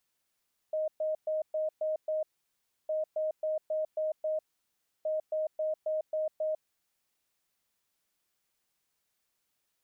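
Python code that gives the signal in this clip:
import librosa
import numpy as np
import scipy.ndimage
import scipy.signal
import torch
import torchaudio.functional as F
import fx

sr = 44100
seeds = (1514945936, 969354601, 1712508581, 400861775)

y = fx.beep_pattern(sr, wave='sine', hz=623.0, on_s=0.15, off_s=0.12, beeps=6, pause_s=0.66, groups=3, level_db=-28.0)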